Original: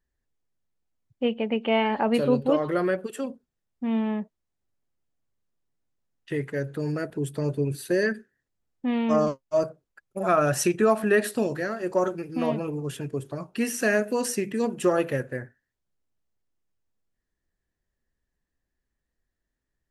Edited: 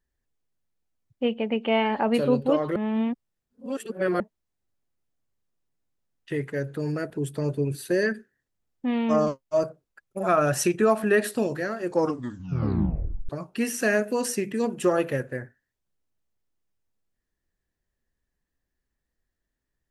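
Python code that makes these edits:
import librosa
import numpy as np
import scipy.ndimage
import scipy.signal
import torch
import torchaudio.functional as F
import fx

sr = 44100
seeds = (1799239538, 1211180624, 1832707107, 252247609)

y = fx.edit(x, sr, fx.reverse_span(start_s=2.76, length_s=1.44),
    fx.tape_stop(start_s=11.85, length_s=1.44), tone=tone)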